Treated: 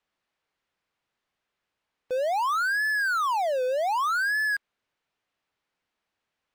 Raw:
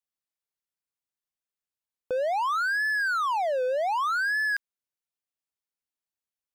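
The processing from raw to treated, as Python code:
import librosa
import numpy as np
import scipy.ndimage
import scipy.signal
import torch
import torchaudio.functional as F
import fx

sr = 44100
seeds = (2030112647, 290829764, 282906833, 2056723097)

y = scipy.signal.sosfilt(scipy.signal.butter(2, 2800.0, 'lowpass', fs=sr, output='sos'), x)
y = fx.low_shelf(y, sr, hz=250.0, db=-4.0)
y = fx.power_curve(y, sr, exponent=0.5)
y = fx.upward_expand(y, sr, threshold_db=-39.0, expansion=2.5)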